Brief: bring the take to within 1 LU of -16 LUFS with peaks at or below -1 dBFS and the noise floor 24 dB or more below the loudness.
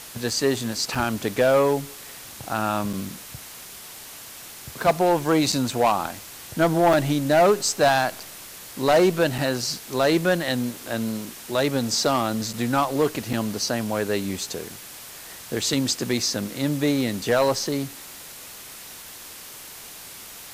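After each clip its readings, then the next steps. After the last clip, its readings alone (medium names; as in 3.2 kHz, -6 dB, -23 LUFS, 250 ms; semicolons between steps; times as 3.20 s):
dropouts 8; longest dropout 4.9 ms; noise floor -41 dBFS; noise floor target -47 dBFS; loudness -23.0 LUFS; peak level -10.5 dBFS; loudness target -16.0 LUFS
-> interpolate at 0.95/2.93/5.52/6.93/8.20/9.38/12.53/13.33 s, 4.9 ms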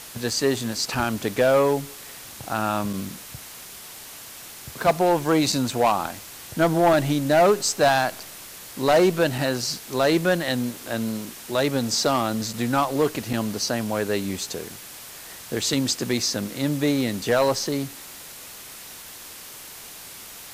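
dropouts 0; noise floor -41 dBFS; noise floor target -47 dBFS
-> noise reduction 6 dB, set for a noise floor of -41 dBFS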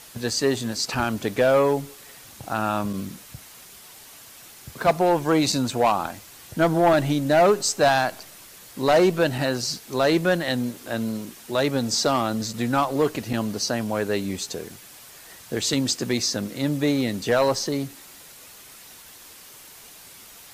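noise floor -46 dBFS; noise floor target -47 dBFS
-> noise reduction 6 dB, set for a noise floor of -46 dBFS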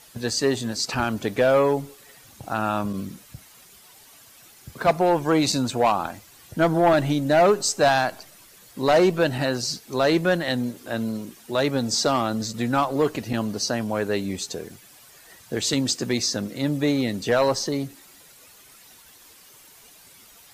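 noise floor -51 dBFS; loudness -23.0 LUFS; peak level -11.0 dBFS; loudness target -16.0 LUFS
-> trim +7 dB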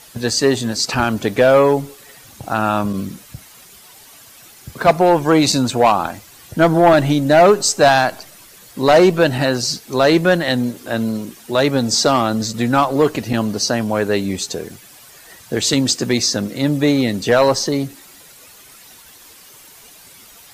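loudness -16.0 LUFS; peak level -4.0 dBFS; noise floor -44 dBFS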